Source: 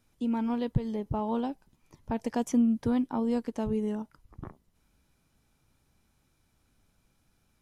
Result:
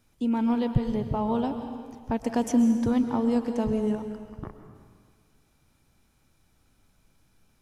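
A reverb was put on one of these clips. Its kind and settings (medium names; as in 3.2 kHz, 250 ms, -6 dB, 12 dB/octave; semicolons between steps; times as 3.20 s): algorithmic reverb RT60 1.7 s, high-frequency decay 0.95×, pre-delay 90 ms, DRR 7 dB; trim +3.5 dB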